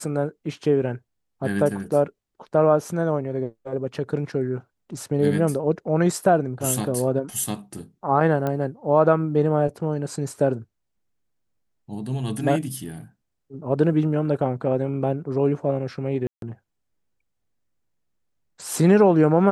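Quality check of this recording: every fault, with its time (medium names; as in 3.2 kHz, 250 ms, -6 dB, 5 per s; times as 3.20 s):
8.47 s: pop -14 dBFS
16.27–16.42 s: dropout 152 ms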